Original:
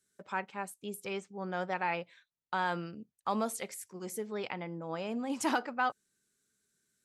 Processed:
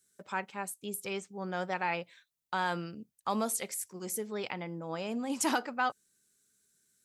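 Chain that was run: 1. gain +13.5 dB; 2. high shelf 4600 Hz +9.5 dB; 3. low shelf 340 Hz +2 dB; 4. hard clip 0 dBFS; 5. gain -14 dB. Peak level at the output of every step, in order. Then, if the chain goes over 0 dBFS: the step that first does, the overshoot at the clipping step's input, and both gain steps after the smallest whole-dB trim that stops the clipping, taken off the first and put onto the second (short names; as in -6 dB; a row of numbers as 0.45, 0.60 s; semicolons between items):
-4.5, -3.0, -3.0, -3.0, -17.0 dBFS; no overload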